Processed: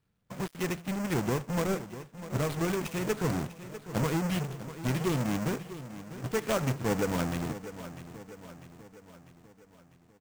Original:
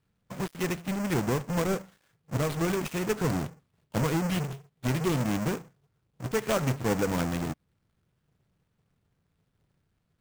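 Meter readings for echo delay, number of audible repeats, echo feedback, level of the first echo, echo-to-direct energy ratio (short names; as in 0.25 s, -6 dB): 0.648 s, 5, 54%, -13.5 dB, -12.0 dB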